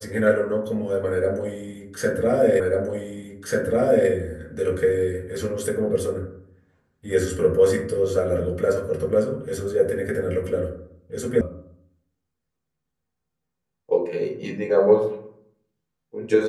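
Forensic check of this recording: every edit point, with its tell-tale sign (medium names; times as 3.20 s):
2.60 s: repeat of the last 1.49 s
11.41 s: sound stops dead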